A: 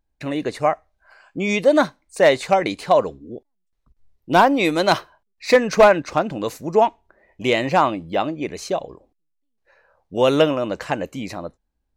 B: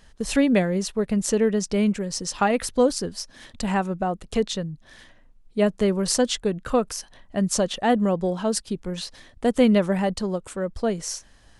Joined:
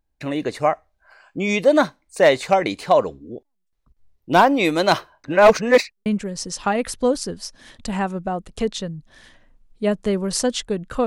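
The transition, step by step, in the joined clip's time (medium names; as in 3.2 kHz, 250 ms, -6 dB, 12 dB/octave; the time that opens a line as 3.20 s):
A
5.24–6.06 s: reverse
6.06 s: go over to B from 1.81 s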